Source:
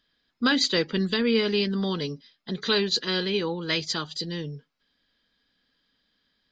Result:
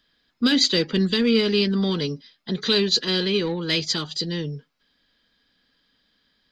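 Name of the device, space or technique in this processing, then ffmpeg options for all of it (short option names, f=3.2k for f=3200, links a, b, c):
one-band saturation: -filter_complex "[0:a]acrossover=split=480|2200[a][b][c];[b]asoftclip=type=tanh:threshold=-38dB[d];[a][d][c]amix=inputs=3:normalize=0,volume=5dB"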